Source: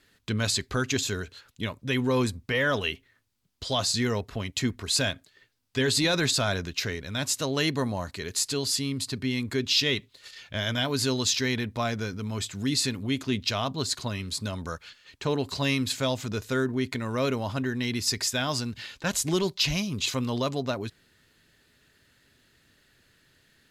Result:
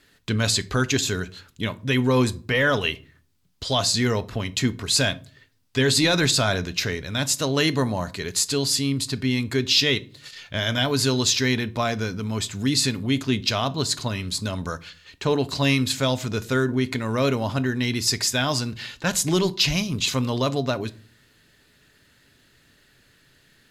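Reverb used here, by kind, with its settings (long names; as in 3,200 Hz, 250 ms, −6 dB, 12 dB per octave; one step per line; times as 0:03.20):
rectangular room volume 330 cubic metres, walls furnished, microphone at 0.35 metres
level +4.5 dB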